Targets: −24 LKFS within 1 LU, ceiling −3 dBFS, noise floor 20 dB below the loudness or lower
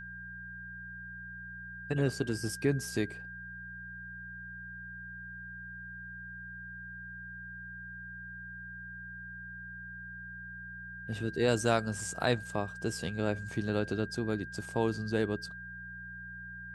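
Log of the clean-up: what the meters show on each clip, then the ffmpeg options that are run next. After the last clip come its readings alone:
mains hum 60 Hz; hum harmonics up to 180 Hz; level of the hum −48 dBFS; interfering tone 1,600 Hz; level of the tone −43 dBFS; integrated loudness −36.5 LKFS; sample peak −13.0 dBFS; target loudness −24.0 LKFS
→ -af "bandreject=frequency=60:width_type=h:width=4,bandreject=frequency=120:width_type=h:width=4,bandreject=frequency=180:width_type=h:width=4"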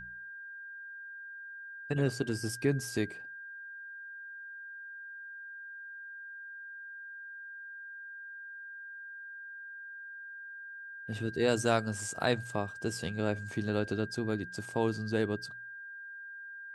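mains hum none found; interfering tone 1,600 Hz; level of the tone −43 dBFS
→ -af "bandreject=frequency=1600:width=30"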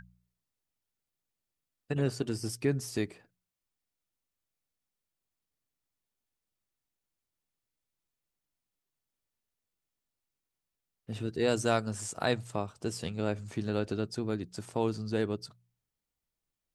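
interfering tone none found; integrated loudness −33.5 LKFS; sample peak −13.5 dBFS; target loudness −24.0 LKFS
→ -af "volume=9.5dB"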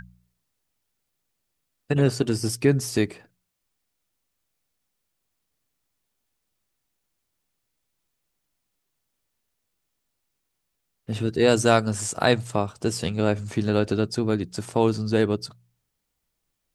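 integrated loudness −24.0 LKFS; sample peak −4.0 dBFS; background noise floor −79 dBFS

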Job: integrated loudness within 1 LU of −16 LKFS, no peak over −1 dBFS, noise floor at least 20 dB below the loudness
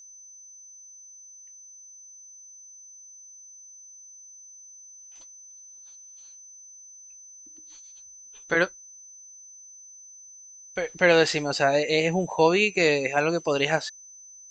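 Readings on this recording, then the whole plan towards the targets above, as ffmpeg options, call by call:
interfering tone 6,100 Hz; level of the tone −45 dBFS; integrated loudness −23.0 LKFS; sample peak −6.5 dBFS; target loudness −16.0 LKFS
→ -af "bandreject=frequency=6100:width=30"
-af "volume=7dB,alimiter=limit=-1dB:level=0:latency=1"

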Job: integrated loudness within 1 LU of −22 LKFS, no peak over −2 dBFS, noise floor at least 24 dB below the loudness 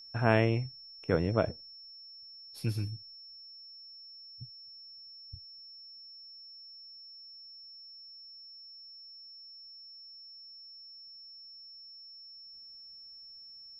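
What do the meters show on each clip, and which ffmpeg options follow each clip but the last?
interfering tone 5,400 Hz; level of the tone −48 dBFS; integrated loudness −38.5 LKFS; sample peak −9.5 dBFS; target loudness −22.0 LKFS
→ -af "bandreject=frequency=5400:width=30"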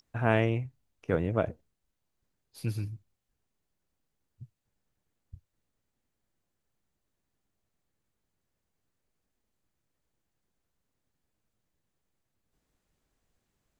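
interfering tone none found; integrated loudness −31.0 LKFS; sample peak −9.5 dBFS; target loudness −22.0 LKFS
→ -af "volume=9dB,alimiter=limit=-2dB:level=0:latency=1"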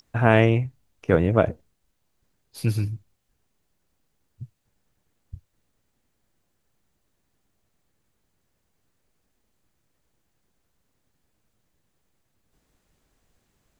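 integrated loudness −22.5 LKFS; sample peak −2.0 dBFS; background noise floor −74 dBFS

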